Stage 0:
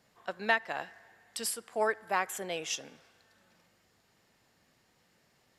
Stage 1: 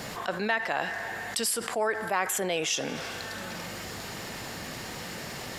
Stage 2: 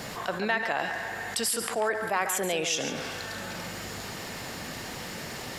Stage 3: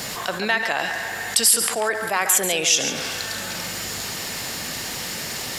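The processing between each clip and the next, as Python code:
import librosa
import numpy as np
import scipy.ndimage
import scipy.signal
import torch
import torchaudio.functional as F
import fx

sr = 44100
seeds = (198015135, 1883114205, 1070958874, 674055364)

y1 = fx.env_flatten(x, sr, amount_pct=70)
y1 = y1 * librosa.db_to_amplitude(-1.5)
y2 = y1 + 10.0 ** (-9.0 / 20.0) * np.pad(y1, (int(140 * sr / 1000.0), 0))[:len(y1)]
y3 = fx.high_shelf(y2, sr, hz=2600.0, db=11.0)
y3 = y3 * librosa.db_to_amplitude(3.0)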